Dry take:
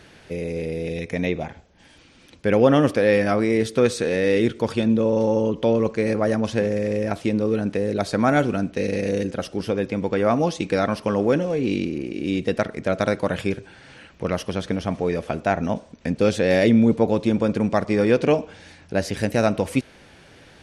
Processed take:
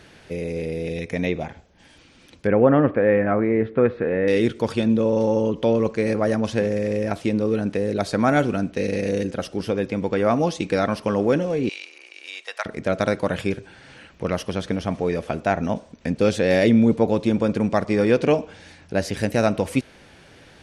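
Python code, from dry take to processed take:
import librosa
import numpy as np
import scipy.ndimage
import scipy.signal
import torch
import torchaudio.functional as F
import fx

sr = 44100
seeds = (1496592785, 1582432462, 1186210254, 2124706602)

y = fx.lowpass(x, sr, hz=2000.0, slope=24, at=(2.47, 4.28))
y = fx.highpass(y, sr, hz=830.0, slope=24, at=(11.69, 12.66))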